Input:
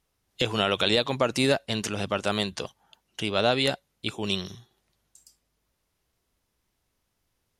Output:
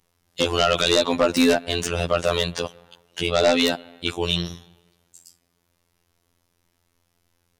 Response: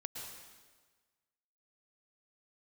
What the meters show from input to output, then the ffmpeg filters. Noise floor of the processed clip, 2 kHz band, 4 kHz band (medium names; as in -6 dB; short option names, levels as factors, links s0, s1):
-71 dBFS, +3.5 dB, +4.0 dB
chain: -filter_complex "[0:a]asplit=2[s0][s1];[1:a]atrim=start_sample=2205,lowpass=2700[s2];[s1][s2]afir=irnorm=-1:irlink=0,volume=0.112[s3];[s0][s3]amix=inputs=2:normalize=0,afftfilt=real='hypot(re,im)*cos(PI*b)':imag='0':win_size=2048:overlap=0.75,aeval=exprs='0.447*sin(PI/2*2*val(0)/0.447)':c=same"